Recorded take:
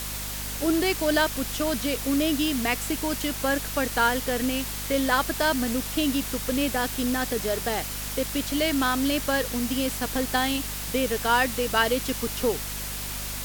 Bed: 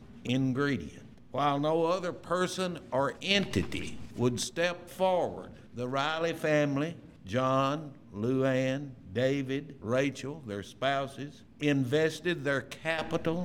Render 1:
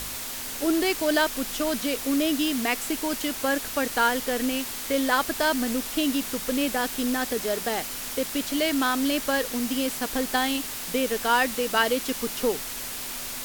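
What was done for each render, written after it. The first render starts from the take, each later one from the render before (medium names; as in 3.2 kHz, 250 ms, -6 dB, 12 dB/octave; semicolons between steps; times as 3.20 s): de-hum 50 Hz, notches 4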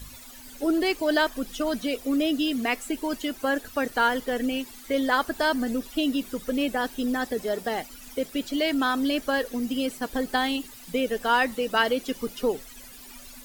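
noise reduction 16 dB, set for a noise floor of -34 dBFS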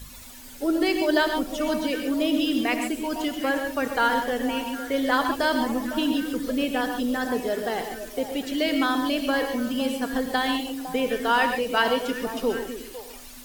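repeats whose band climbs or falls 253 ms, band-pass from 280 Hz, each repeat 1.4 oct, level -6 dB; gated-style reverb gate 160 ms rising, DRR 6 dB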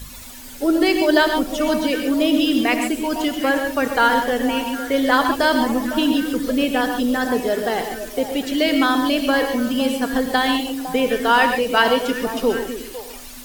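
trim +6 dB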